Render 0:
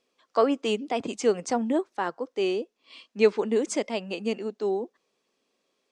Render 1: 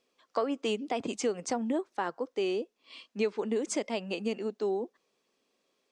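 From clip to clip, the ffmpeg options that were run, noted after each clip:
ffmpeg -i in.wav -af "acompressor=threshold=-26dB:ratio=4,volume=-1dB" out.wav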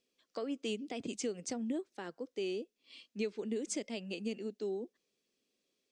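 ffmpeg -i in.wav -af "equalizer=frequency=970:width=0.89:gain=-14.5,volume=-3dB" out.wav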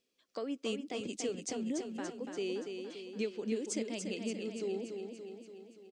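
ffmpeg -i in.wav -af "aecho=1:1:287|574|861|1148|1435|1722|2009|2296:0.501|0.296|0.174|0.103|0.0607|0.0358|0.0211|0.0125" out.wav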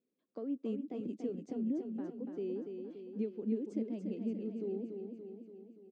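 ffmpeg -i in.wav -af "bandpass=frequency=230:width_type=q:width=1.2:csg=0,volume=2.5dB" out.wav

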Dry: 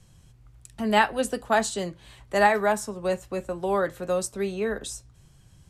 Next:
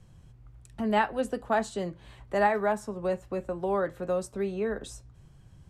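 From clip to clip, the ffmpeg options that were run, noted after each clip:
ffmpeg -i in.wav -filter_complex "[0:a]highshelf=frequency=2700:gain=-12,asplit=2[link_01][link_02];[link_02]acompressor=threshold=-34dB:ratio=6,volume=-0.5dB[link_03];[link_01][link_03]amix=inputs=2:normalize=0,volume=-4.5dB" out.wav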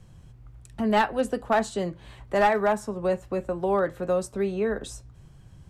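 ffmpeg -i in.wav -af "aeval=exprs='clip(val(0),-1,0.106)':channel_layout=same,volume=4dB" out.wav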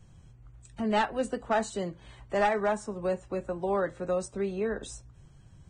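ffmpeg -i in.wav -af "volume=-4.5dB" -ar 22050 -c:a libvorbis -b:a 16k out.ogg

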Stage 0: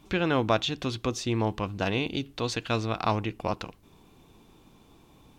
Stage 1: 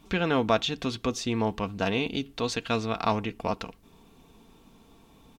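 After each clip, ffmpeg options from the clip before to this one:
ffmpeg -i in.wav -af "aecho=1:1:4.4:0.38" out.wav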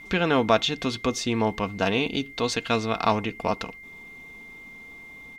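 ffmpeg -i in.wav -af "lowshelf=frequency=210:gain=-3.5,aeval=exprs='val(0)+0.00501*sin(2*PI*2100*n/s)':channel_layout=same,volume=4dB" out.wav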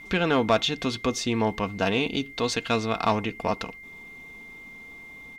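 ffmpeg -i in.wav -af "asoftclip=type=tanh:threshold=-10dB" out.wav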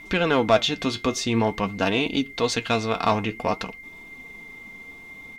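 ffmpeg -i in.wav -af "flanger=delay=3:depth=8.2:regen=62:speed=0.5:shape=sinusoidal,volume=6.5dB" out.wav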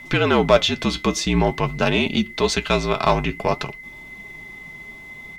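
ffmpeg -i in.wav -af "afreqshift=-53,volume=3.5dB" out.wav

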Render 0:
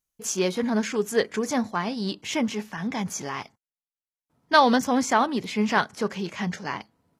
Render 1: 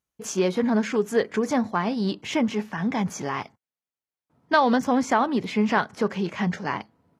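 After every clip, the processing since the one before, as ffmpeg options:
ffmpeg -i in.wav -af "highpass=58,highshelf=frequency=3600:gain=-11.5,acompressor=threshold=-24dB:ratio=2,volume=4.5dB" out.wav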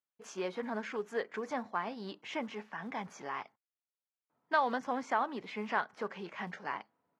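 ffmpeg -i in.wav -af "acrusher=bits=9:mode=log:mix=0:aa=0.000001,bandpass=frequency=1300:width_type=q:width=0.56:csg=0,volume=-8.5dB" out.wav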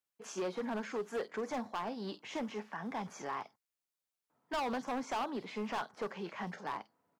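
ffmpeg -i in.wav -filter_complex "[0:a]acrossover=split=150|1400|4100[link_01][link_02][link_03][link_04];[link_03]acompressor=threshold=-54dB:ratio=6[link_05];[link_04]asplit=2[link_06][link_07];[link_07]adelay=48,volume=-2.5dB[link_08];[link_06][link_08]amix=inputs=2:normalize=0[link_09];[link_01][link_02][link_05][link_09]amix=inputs=4:normalize=0,asoftclip=type=hard:threshold=-34dB,volume=2dB" out.wav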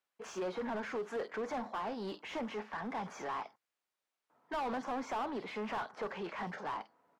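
ffmpeg -i in.wav -filter_complex "[0:a]asplit=2[link_01][link_02];[link_02]highpass=frequency=720:poles=1,volume=16dB,asoftclip=type=tanh:threshold=-31.5dB[link_03];[link_01][link_03]amix=inputs=2:normalize=0,lowpass=frequency=1500:poles=1,volume=-6dB" out.wav

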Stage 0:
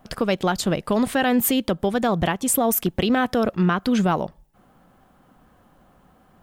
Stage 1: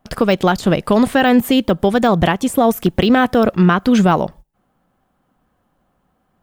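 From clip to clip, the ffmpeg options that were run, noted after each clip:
ffmpeg -i in.wav -af "deesser=0.7,agate=range=-16dB:threshold=-43dB:ratio=16:detection=peak,volume=7.5dB" out.wav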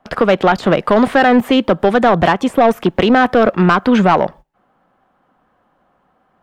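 ffmpeg -i in.wav -filter_complex "[0:a]highshelf=frequency=3100:gain=-10,acrossover=split=250|4300[link_01][link_02][link_03];[link_03]alimiter=level_in=9dB:limit=-24dB:level=0:latency=1:release=267,volume=-9dB[link_04];[link_01][link_02][link_04]amix=inputs=3:normalize=0,asplit=2[link_05][link_06];[link_06]highpass=frequency=720:poles=1,volume=16dB,asoftclip=type=tanh:threshold=-1dB[link_07];[link_05][link_07]amix=inputs=2:normalize=0,lowpass=frequency=3300:poles=1,volume=-6dB" out.wav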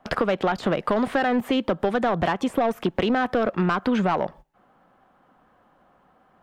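ffmpeg -i in.wav -af "acompressor=threshold=-23dB:ratio=3" out.wav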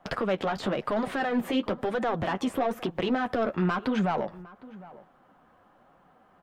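ffmpeg -i in.wav -filter_complex "[0:a]alimiter=limit=-19dB:level=0:latency=1:release=97,flanger=delay=5.5:depth=7.6:regen=-26:speed=1:shape=triangular,asplit=2[link_01][link_02];[link_02]adelay=758,volume=-19dB,highshelf=frequency=4000:gain=-17.1[link_03];[link_01][link_03]amix=inputs=2:normalize=0,volume=3dB" out.wav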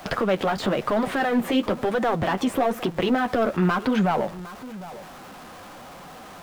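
ffmpeg -i in.wav -af "aeval=exprs='val(0)+0.5*0.0075*sgn(val(0))':channel_layout=same,volume=4.5dB" out.wav

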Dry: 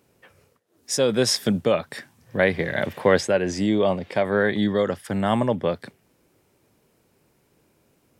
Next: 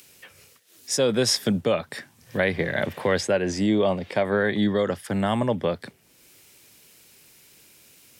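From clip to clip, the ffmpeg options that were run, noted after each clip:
ffmpeg -i in.wav -filter_complex "[0:a]acrossover=split=120|2100[link_01][link_02][link_03];[link_02]alimiter=limit=-12.5dB:level=0:latency=1:release=134[link_04];[link_03]acompressor=mode=upward:threshold=-38dB:ratio=2.5[link_05];[link_01][link_04][link_05]amix=inputs=3:normalize=0" out.wav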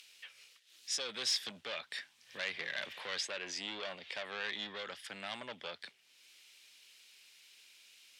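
ffmpeg -i in.wav -af "asoftclip=type=tanh:threshold=-22dB,bandpass=frequency=3300:width_type=q:width=1.4:csg=0" out.wav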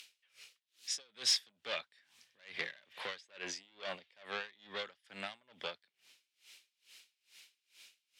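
ffmpeg -i in.wav -af "aeval=exprs='val(0)*pow(10,-30*(0.5-0.5*cos(2*PI*2.3*n/s))/20)':channel_layout=same,volume=4dB" out.wav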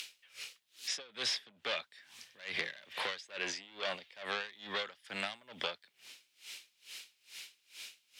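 ffmpeg -i in.wav -filter_complex "[0:a]acrossover=split=580|3600[link_01][link_02][link_03];[link_01]acompressor=threshold=-58dB:ratio=4[link_04];[link_02]acompressor=threshold=-48dB:ratio=4[link_05];[link_03]acompressor=threshold=-55dB:ratio=4[link_06];[link_04][link_05][link_06]amix=inputs=3:normalize=0,volume=11dB" out.wav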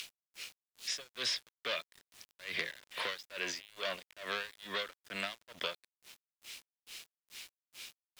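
ffmpeg -i in.wav -af "asuperstop=centerf=810:order=4:qfactor=5.4,aeval=exprs='val(0)*gte(abs(val(0)),0.00316)':channel_layout=same" out.wav

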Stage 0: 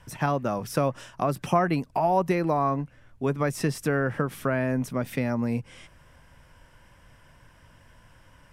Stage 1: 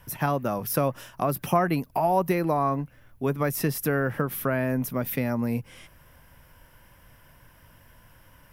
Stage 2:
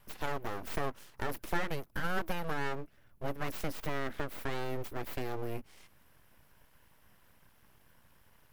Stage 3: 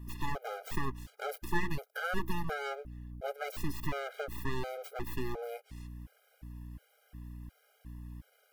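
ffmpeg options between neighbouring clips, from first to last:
ffmpeg -i in.wav -af "aexciter=amount=4.5:drive=8.7:freq=11000" out.wav
ffmpeg -i in.wav -af "aeval=exprs='abs(val(0))':channel_layout=same,volume=-8dB" out.wav
ffmpeg -i in.wav -af "aeval=exprs='val(0)+0.00501*(sin(2*PI*60*n/s)+sin(2*PI*2*60*n/s)/2+sin(2*PI*3*60*n/s)/3+sin(2*PI*4*60*n/s)/4+sin(2*PI*5*60*n/s)/5)':channel_layout=same,afftfilt=real='re*gt(sin(2*PI*1.4*pts/sr)*(1-2*mod(floor(b*sr/1024/410),2)),0)':imag='im*gt(sin(2*PI*1.4*pts/sr)*(1-2*mod(floor(b*sr/1024/410),2)),0)':win_size=1024:overlap=0.75,volume=2.5dB" out.wav

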